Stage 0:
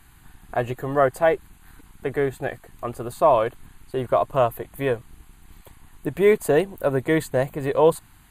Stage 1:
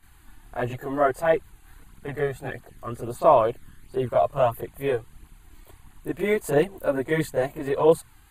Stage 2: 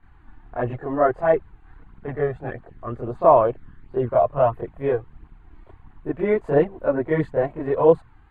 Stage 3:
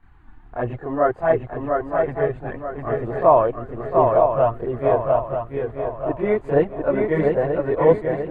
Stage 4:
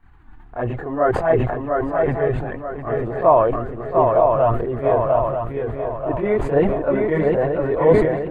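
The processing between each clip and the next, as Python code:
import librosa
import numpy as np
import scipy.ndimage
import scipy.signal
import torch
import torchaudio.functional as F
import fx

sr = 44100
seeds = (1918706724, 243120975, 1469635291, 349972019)

y1 = fx.chorus_voices(x, sr, voices=2, hz=0.76, base_ms=27, depth_ms=1.8, mix_pct=70)
y2 = scipy.signal.sosfilt(scipy.signal.butter(2, 1500.0, 'lowpass', fs=sr, output='sos'), y1)
y2 = y2 * librosa.db_to_amplitude(3.0)
y3 = fx.echo_swing(y2, sr, ms=934, ratio=3, feedback_pct=39, wet_db=-3.5)
y4 = fx.sustainer(y3, sr, db_per_s=47.0)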